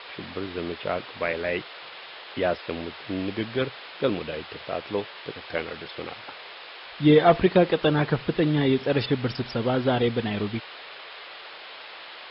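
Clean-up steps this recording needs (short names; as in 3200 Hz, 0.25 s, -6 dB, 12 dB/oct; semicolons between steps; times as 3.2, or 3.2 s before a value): noise print and reduce 27 dB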